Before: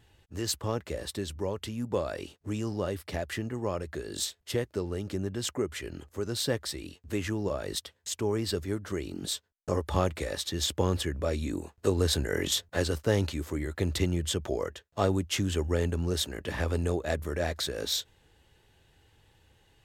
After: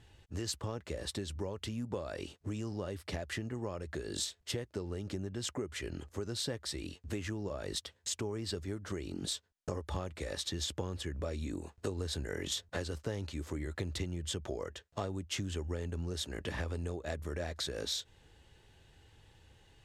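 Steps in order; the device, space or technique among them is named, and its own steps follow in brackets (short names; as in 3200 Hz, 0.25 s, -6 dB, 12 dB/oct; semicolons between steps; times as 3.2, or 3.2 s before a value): LPF 8000 Hz 12 dB/oct; ASMR close-microphone chain (low shelf 160 Hz +3 dB; compressor 5:1, threshold -35 dBFS, peak gain reduction 14.5 dB; high shelf 7800 Hz +6 dB)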